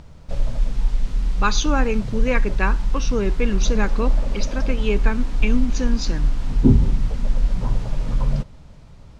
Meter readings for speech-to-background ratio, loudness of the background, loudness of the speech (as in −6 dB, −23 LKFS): −1.0 dB, −24.5 LKFS, −25.5 LKFS